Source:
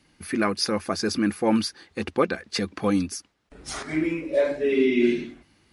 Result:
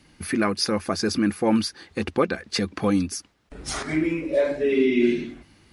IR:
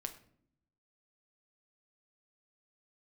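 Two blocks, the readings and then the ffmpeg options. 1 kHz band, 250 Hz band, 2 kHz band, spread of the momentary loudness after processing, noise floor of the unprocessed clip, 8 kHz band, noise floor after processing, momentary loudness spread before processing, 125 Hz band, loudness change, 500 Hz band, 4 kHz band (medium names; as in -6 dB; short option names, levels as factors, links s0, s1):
+0.5 dB, +1.5 dB, +0.5 dB, 10 LU, -65 dBFS, +2.0 dB, -60 dBFS, 12 LU, +3.0 dB, +1.0 dB, +0.5 dB, +1.0 dB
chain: -filter_complex "[0:a]lowshelf=f=170:g=4,asplit=2[s0][s1];[s1]acompressor=threshold=0.0251:ratio=6,volume=1.19[s2];[s0][s2]amix=inputs=2:normalize=0,volume=0.794"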